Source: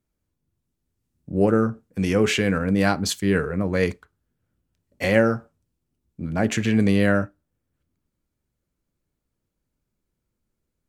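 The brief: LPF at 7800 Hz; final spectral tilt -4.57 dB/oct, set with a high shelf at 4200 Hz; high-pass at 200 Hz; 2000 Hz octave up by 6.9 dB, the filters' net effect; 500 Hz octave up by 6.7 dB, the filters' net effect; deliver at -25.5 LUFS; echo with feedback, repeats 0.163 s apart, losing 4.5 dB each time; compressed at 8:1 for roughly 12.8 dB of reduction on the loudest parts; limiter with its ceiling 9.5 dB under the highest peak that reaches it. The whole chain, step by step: HPF 200 Hz; LPF 7800 Hz; bell 500 Hz +7.5 dB; bell 2000 Hz +7.5 dB; high shelf 4200 Hz +3.5 dB; compressor 8:1, threshold -22 dBFS; limiter -20 dBFS; feedback echo 0.163 s, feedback 60%, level -4.5 dB; gain +4 dB

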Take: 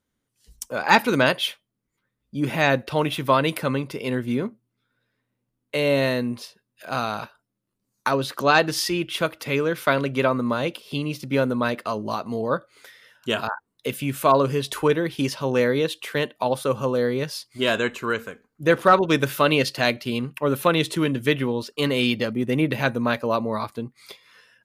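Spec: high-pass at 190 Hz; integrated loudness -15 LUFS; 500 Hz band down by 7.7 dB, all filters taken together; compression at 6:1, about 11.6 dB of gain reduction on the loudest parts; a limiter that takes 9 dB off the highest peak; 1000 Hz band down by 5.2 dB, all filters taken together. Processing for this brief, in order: HPF 190 Hz; bell 500 Hz -8 dB; bell 1000 Hz -4.5 dB; compressor 6:1, threshold -27 dBFS; gain +19 dB; limiter -2 dBFS

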